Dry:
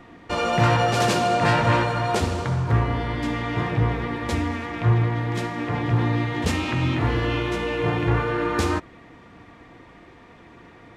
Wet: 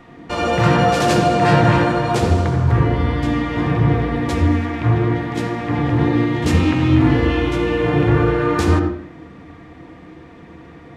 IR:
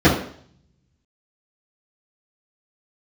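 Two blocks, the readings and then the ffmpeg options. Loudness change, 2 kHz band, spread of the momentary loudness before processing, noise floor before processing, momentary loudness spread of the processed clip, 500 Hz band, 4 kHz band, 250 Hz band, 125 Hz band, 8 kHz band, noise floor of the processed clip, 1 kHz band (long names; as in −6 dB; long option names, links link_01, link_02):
+6.0 dB, +3.0 dB, 7 LU, −48 dBFS, 6 LU, +6.0 dB, +2.5 dB, +9.0 dB, +5.5 dB, +2.0 dB, −41 dBFS, +4.0 dB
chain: -filter_complex "[0:a]asplit=2[link_01][link_02];[1:a]atrim=start_sample=2205,adelay=74[link_03];[link_02][link_03]afir=irnorm=-1:irlink=0,volume=-28dB[link_04];[link_01][link_04]amix=inputs=2:normalize=0,volume=2dB"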